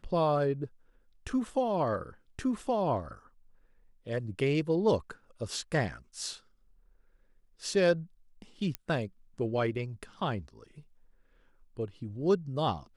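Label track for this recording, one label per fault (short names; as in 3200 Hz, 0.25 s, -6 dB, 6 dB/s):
8.750000	8.750000	pop -18 dBFS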